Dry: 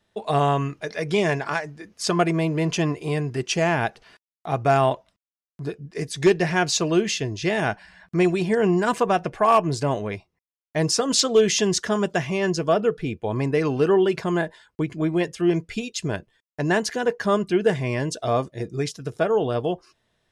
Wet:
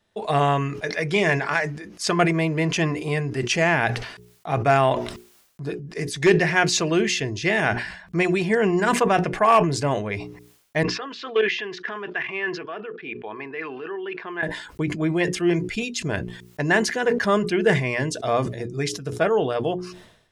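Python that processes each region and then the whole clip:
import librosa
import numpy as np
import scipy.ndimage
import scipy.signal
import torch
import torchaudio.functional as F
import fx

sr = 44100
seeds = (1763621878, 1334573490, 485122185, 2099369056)

y = fx.chain(x, sr, fx.level_steps(step_db=15),
    fx.cabinet(low_hz=380.0, low_slope=12, high_hz=3700.0, hz=(390.0, 560.0, 1100.0, 1700.0, 2500.0), db=(4, -9, 4, 7, 5)), at=(10.83, 14.43))
y = fx.hum_notches(y, sr, base_hz=60, count=7)
y = fx.dynamic_eq(y, sr, hz=2000.0, q=1.8, threshold_db=-43.0, ratio=4.0, max_db=7)
y = fx.sustainer(y, sr, db_per_s=76.0)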